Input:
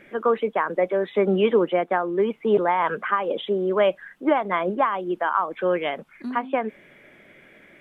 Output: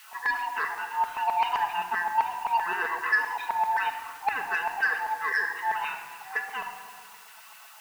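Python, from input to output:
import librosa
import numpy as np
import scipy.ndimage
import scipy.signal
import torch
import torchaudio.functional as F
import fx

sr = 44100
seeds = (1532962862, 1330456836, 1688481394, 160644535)

y = fx.band_swap(x, sr, width_hz=500)
y = scipy.signal.sosfilt(scipy.signal.butter(4, 3000.0, 'lowpass', fs=sr, output='sos'), y)
y = fx.quant_dither(y, sr, seeds[0], bits=8, dither='triangular')
y = fx.filter_lfo_highpass(y, sr, shape='saw_down', hz=7.7, low_hz=750.0, high_hz=2000.0, q=1.9)
y = 10.0 ** (-12.5 / 20.0) * np.tanh(y / 10.0 ** (-12.5 / 20.0))
y = fx.room_shoebox(y, sr, seeds[1], volume_m3=3100.0, walls='mixed', distance_m=1.5)
y = F.gain(torch.from_numpy(y), -5.5).numpy()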